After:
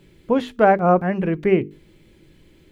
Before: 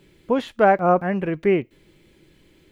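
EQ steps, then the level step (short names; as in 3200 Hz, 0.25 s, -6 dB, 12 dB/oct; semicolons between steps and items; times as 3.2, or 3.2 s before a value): low shelf 290 Hz +6.5 dB; notches 50/100/150/200/250/300/350/400/450 Hz; 0.0 dB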